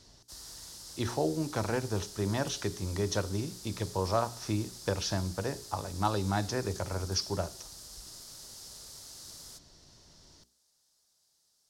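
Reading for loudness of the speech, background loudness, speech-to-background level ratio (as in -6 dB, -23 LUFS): -33.5 LUFS, -45.5 LUFS, 12.0 dB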